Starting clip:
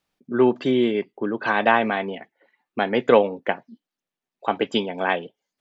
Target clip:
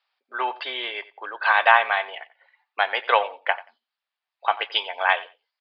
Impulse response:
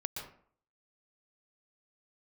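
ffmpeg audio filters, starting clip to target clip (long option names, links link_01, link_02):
-filter_complex "[0:a]highpass=frequency=770:width=0.5412,highpass=frequency=770:width=1.3066,asplit=2[link_01][link_02];[link_02]aecho=0:1:90|180:0.119|0.019[link_03];[link_01][link_03]amix=inputs=2:normalize=0,aresample=11025,aresample=44100,volume=4.5dB"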